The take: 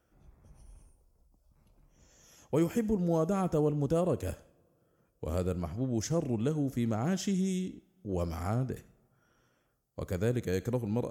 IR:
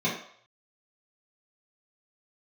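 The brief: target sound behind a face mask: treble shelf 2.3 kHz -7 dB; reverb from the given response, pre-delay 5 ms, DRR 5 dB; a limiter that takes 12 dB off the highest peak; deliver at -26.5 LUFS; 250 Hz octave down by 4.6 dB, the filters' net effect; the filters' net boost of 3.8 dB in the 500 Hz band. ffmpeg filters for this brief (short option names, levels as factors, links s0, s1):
-filter_complex "[0:a]equalizer=f=250:t=o:g=-9,equalizer=f=500:t=o:g=7,alimiter=level_in=1.41:limit=0.0631:level=0:latency=1,volume=0.708,asplit=2[s0][s1];[1:a]atrim=start_sample=2205,adelay=5[s2];[s1][s2]afir=irnorm=-1:irlink=0,volume=0.15[s3];[s0][s3]amix=inputs=2:normalize=0,highshelf=f=2300:g=-7,volume=2.51"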